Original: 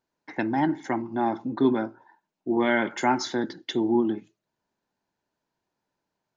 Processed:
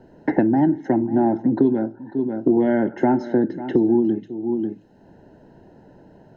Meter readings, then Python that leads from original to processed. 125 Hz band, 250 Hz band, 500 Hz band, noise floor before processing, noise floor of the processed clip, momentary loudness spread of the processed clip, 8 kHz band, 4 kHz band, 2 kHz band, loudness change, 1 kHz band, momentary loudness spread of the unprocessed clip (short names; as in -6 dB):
+9.0 dB, +8.0 dB, +7.0 dB, -84 dBFS, -51 dBFS, 8 LU, n/a, under -10 dB, -4.5 dB, +5.5 dB, +0.5 dB, 8 LU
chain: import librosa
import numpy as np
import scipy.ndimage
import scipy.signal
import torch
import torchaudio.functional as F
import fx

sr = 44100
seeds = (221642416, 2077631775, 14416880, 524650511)

p1 = scipy.signal.lfilter(np.full(38, 1.0 / 38), 1.0, x)
p2 = p1 + fx.echo_single(p1, sr, ms=543, db=-20.0, dry=0)
p3 = fx.band_squash(p2, sr, depth_pct=100)
y = F.gain(torch.from_numpy(p3), 8.5).numpy()